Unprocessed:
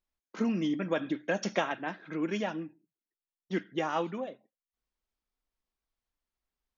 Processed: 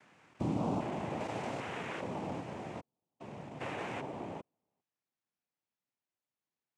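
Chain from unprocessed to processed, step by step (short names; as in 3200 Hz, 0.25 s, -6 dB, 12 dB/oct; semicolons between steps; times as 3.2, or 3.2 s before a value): stepped spectrum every 0.4 s; noise vocoder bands 4; high shelf 4100 Hz -8 dB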